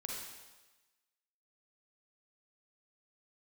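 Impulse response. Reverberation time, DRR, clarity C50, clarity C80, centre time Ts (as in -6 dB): 1.2 s, -2.0 dB, -1.0 dB, 2.5 dB, 76 ms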